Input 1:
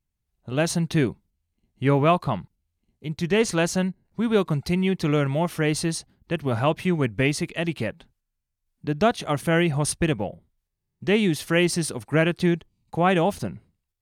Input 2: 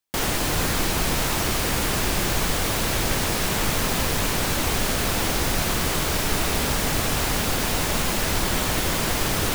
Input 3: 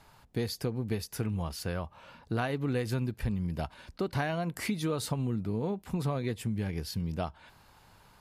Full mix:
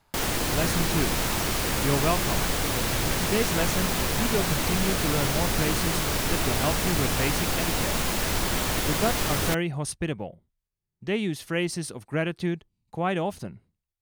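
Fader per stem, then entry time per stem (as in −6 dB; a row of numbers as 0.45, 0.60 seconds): −6.5, −3.0, −7.0 decibels; 0.00, 0.00, 0.00 seconds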